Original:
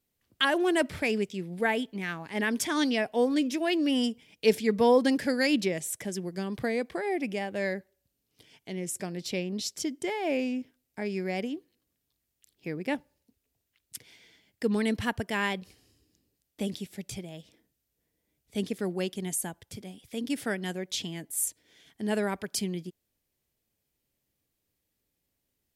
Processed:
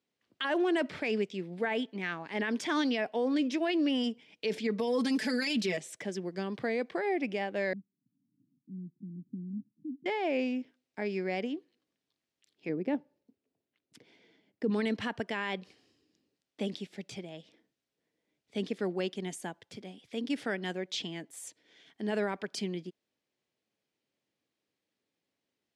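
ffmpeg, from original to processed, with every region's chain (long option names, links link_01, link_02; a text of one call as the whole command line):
ffmpeg -i in.wav -filter_complex "[0:a]asettb=1/sr,asplit=3[link_01][link_02][link_03];[link_01]atrim=end=4.794[link_04];[link_02]atrim=start=4.79:end=5.77,asetpts=PTS-STARTPTS,afade=type=in:duration=0.004:curve=qsin,afade=type=out:start_time=0.976:duration=0.004:curve=qsin,aemphasis=mode=production:type=75fm,aecho=1:1:4.6:0.91,atrim=end_sample=43218[link_05];[link_03]atrim=start=5.766[link_06];[link_04][link_05]acrossfade=duration=0.004:curve1=hsin:curve2=qsin[link_07];[link_07][link_06]acrossfade=duration=0.004:curve1=qsin:curve2=hsin,asettb=1/sr,asplit=3[link_08][link_09][link_10];[link_08]atrim=end=7.734[link_11];[link_09]atrim=start=7.73:end=10.06,asetpts=PTS-STARTPTS,afade=type=in:duration=0.004:curve=qsin,afade=type=out:start_time=2.326:duration=0.004:curve=qsin,acompressor=mode=upward:threshold=-54dB:ratio=2.5:attack=3.2:release=140:knee=2.83:detection=peak,asuperpass=centerf=180:order=12:qfactor=1[link_12];[link_10]atrim=start=10.056[link_13];[link_11][link_12]acrossfade=duration=0.004:curve1=hsin:curve2=qsin[link_14];[link_14][link_13]acrossfade=duration=0.004:curve1=qsin:curve2=hsin,asettb=1/sr,asplit=3[link_15][link_16][link_17];[link_15]atrim=end=12.694[link_18];[link_16]atrim=start=12.69:end=14.7,asetpts=PTS-STARTPTS,afade=type=in:duration=0.004:curve=qsin,afade=type=out:start_time=2.006:duration=0.004:curve=qsin,highpass=frequency=240:poles=1,tiltshelf=frequency=690:gain=9.5[link_19];[link_17]atrim=start=14.696[link_20];[link_18][link_19]acrossfade=duration=0.004:curve1=hsin:curve2=qsin[link_21];[link_21][link_20]acrossfade=duration=0.004:curve1=qsin:curve2=hsin,highpass=210,alimiter=limit=-21.5dB:level=0:latency=1:release=21,lowpass=4600" out.wav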